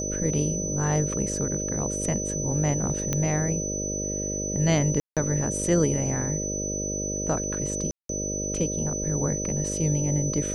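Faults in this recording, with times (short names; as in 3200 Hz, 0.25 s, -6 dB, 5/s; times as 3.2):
buzz 50 Hz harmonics 12 -32 dBFS
tone 6000 Hz -30 dBFS
3.13 pop -11 dBFS
5–5.17 gap 0.167 s
7.91–8.09 gap 0.183 s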